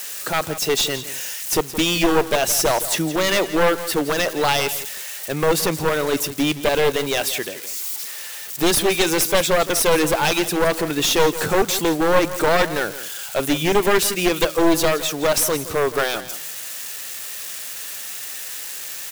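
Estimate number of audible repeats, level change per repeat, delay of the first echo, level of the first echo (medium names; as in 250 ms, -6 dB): 2, -16.0 dB, 169 ms, -14.0 dB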